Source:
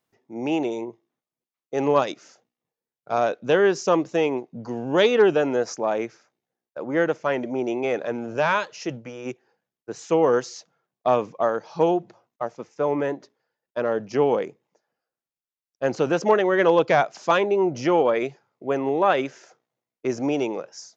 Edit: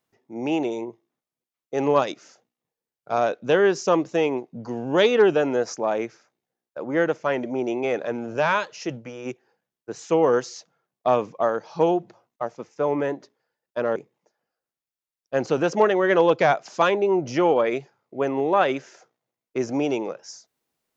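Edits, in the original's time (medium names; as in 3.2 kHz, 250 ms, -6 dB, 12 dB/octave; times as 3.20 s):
13.96–14.45 s: delete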